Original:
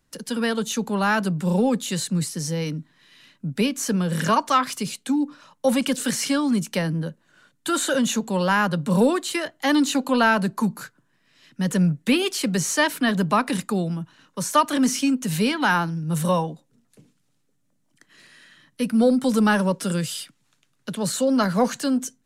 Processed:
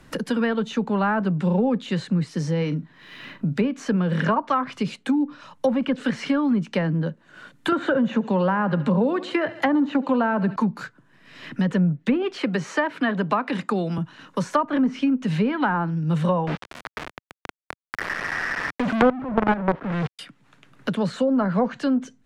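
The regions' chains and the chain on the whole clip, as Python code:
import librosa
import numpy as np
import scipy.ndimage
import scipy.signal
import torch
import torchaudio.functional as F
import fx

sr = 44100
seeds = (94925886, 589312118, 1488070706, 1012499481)

y = fx.chain(x, sr, fx.median_filter(points=3),
    fx.doubler(ms=41.0, db=-13.5),
    fx.resample_bad(factor=2, down='none', up='hold'), at=(2.57, 3.65))
y = fx.chain(y, sr, fx.highpass(hz=57.0, slope=12),
    fx.echo_feedback(ms=69, feedback_pct=48, wet_db=-19.5),
    fx.band_squash(depth_pct=70), at=(7.72, 10.56))
y = fx.chain(y, sr, fx.highpass(hz=320.0, slope=6),
    fx.band_squash(depth_pct=40), at=(12.36, 13.98))
y = fx.chain(y, sr, fx.crossing_spikes(level_db=-18.0),
    fx.steep_lowpass(hz=1900.0, slope=36),
    fx.quant_companded(bits=2), at=(16.47, 20.19))
y = fx.env_lowpass_down(y, sr, base_hz=1100.0, full_db=-15.5)
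y = fx.bass_treble(y, sr, bass_db=0, treble_db=-10)
y = fx.band_squash(y, sr, depth_pct=70)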